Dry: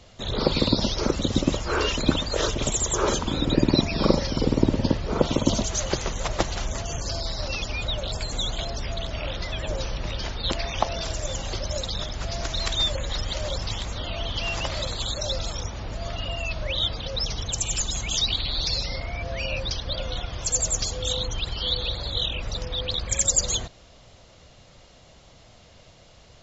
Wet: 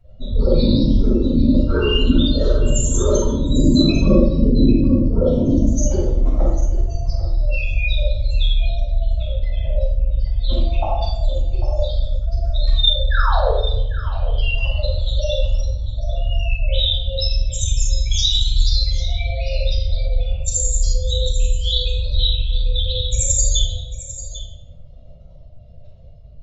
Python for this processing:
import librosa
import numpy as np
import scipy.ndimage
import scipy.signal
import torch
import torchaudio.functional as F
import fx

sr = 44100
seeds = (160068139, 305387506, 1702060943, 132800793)

y = fx.spec_expand(x, sr, power=2.7)
y = fx.dynamic_eq(y, sr, hz=3500.0, q=0.78, threshold_db=-37.0, ratio=4.0, max_db=3)
y = fx.spec_paint(y, sr, seeds[0], shape='fall', start_s=13.1, length_s=0.4, low_hz=410.0, high_hz=1800.0, level_db=-25.0)
y = y + 10.0 ** (-14.0 / 20.0) * np.pad(y, (int(796 * sr / 1000.0), 0))[:len(y)]
y = fx.room_shoebox(y, sr, seeds[1], volume_m3=320.0, walls='mixed', distance_m=6.9)
y = y * librosa.db_to_amplitude(-10.0)